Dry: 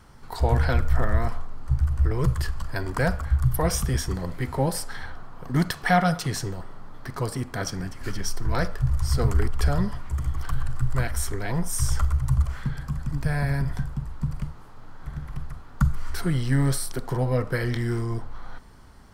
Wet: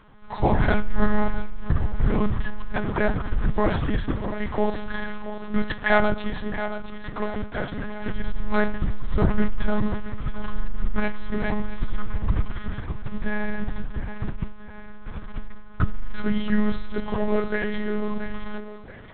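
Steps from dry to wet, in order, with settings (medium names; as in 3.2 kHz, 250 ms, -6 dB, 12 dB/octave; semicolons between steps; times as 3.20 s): hum notches 60/120/180 Hz; in parallel at -12 dB: bit crusher 5-bit; on the sum: thinning echo 675 ms, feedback 54%, high-pass 180 Hz, level -11.5 dB; reverberation RT60 0.80 s, pre-delay 23 ms, DRR 14 dB; monotone LPC vocoder at 8 kHz 210 Hz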